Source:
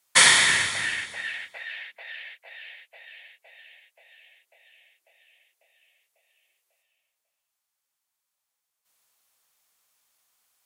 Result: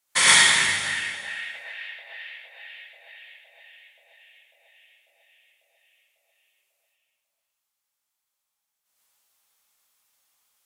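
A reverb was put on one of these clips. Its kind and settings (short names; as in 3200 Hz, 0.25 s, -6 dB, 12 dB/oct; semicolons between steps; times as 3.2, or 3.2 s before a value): non-linear reverb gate 0.15 s rising, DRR -5.5 dB; gain -6 dB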